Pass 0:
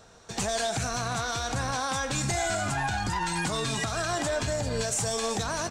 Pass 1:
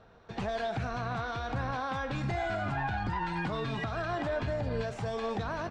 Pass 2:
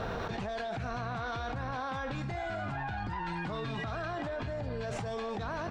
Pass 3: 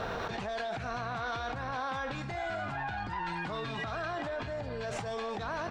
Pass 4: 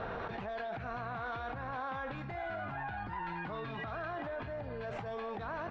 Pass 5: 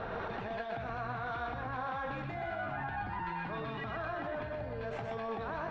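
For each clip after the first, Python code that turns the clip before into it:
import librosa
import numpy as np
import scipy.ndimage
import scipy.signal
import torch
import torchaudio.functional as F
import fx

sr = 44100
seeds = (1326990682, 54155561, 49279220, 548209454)

y1 = fx.air_absorb(x, sr, metres=360.0)
y1 = y1 * librosa.db_to_amplitude(-2.0)
y2 = fx.env_flatten(y1, sr, amount_pct=100)
y2 = y2 * librosa.db_to_amplitude(-6.0)
y3 = fx.low_shelf(y2, sr, hz=360.0, db=-7.0)
y3 = y3 * librosa.db_to_amplitude(2.5)
y4 = scipy.signal.sosfilt(scipy.signal.butter(2, 2500.0, 'lowpass', fs=sr, output='sos'), y3)
y4 = y4 * librosa.db_to_amplitude(-3.5)
y5 = y4 + 10.0 ** (-3.5 / 20.0) * np.pad(y4, (int(124 * sr / 1000.0), 0))[:len(y4)]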